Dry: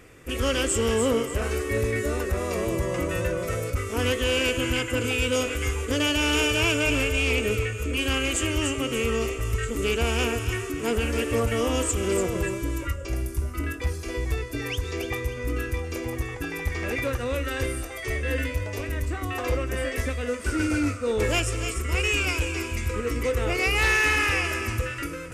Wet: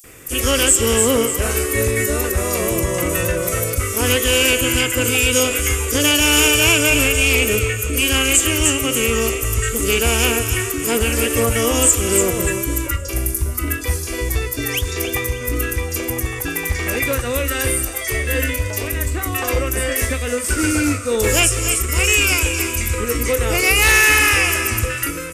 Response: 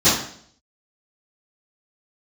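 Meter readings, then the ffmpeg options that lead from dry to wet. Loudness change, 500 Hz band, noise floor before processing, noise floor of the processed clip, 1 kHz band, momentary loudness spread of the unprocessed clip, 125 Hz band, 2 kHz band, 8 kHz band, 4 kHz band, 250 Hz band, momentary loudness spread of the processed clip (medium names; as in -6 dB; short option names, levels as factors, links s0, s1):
+9.0 dB, +6.0 dB, -35 dBFS, -26 dBFS, +7.0 dB, 8 LU, +6.0 dB, +8.5 dB, +16.0 dB, +10.0 dB, +6.0 dB, 9 LU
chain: -filter_complex "[0:a]aemphasis=mode=production:type=75kf,acrossover=split=4700[s0][s1];[s0]adelay=40[s2];[s2][s1]amix=inputs=2:normalize=0,alimiter=level_in=2.24:limit=0.891:release=50:level=0:latency=1,volume=0.891"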